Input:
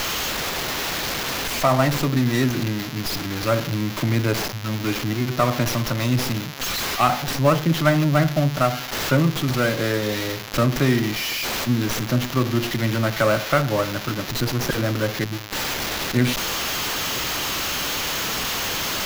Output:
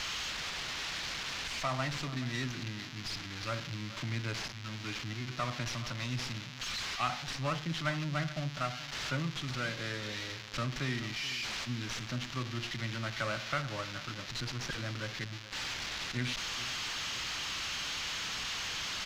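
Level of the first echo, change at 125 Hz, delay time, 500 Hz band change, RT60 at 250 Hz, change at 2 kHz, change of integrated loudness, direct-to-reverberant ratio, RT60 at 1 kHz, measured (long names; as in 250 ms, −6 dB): −16.0 dB, −15.5 dB, 429 ms, −20.0 dB, no reverb audible, −11.0 dB, −14.0 dB, no reverb audible, no reverb audible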